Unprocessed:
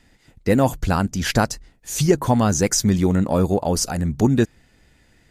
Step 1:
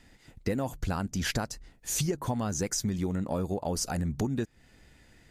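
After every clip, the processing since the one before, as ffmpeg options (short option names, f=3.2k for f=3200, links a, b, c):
-af "acompressor=threshold=-26dB:ratio=6,volume=-1.5dB"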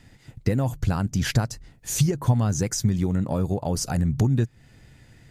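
-af "equalizer=f=120:w=1.7:g=12,volume=3dB"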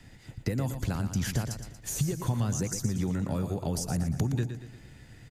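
-filter_complex "[0:a]acrossover=split=160|540|1300|7000[a][b][c][d][e];[a]acompressor=threshold=-32dB:ratio=4[f];[b]acompressor=threshold=-33dB:ratio=4[g];[c]acompressor=threshold=-46dB:ratio=4[h];[d]acompressor=threshold=-43dB:ratio=4[i];[e]acompressor=threshold=-36dB:ratio=4[j];[f][g][h][i][j]amix=inputs=5:normalize=0,aecho=1:1:117|234|351|468|585:0.355|0.16|0.0718|0.0323|0.0145"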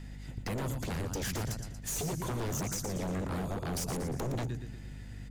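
-af "aeval=exprs='val(0)+0.00708*(sin(2*PI*50*n/s)+sin(2*PI*2*50*n/s)/2+sin(2*PI*3*50*n/s)/3+sin(2*PI*4*50*n/s)/4+sin(2*PI*5*50*n/s)/5)':c=same,aeval=exprs='0.0355*(abs(mod(val(0)/0.0355+3,4)-2)-1)':c=same"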